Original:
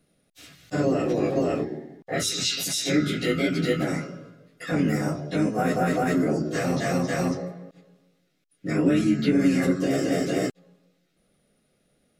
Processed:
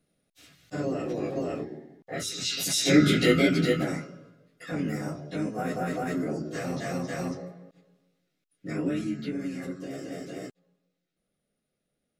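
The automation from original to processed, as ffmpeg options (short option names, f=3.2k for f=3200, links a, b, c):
-af "volume=5dB,afade=t=in:st=2.4:d=0.72:silence=0.251189,afade=t=out:st=3.12:d=0.94:silence=0.251189,afade=t=out:st=8.72:d=0.76:silence=0.473151"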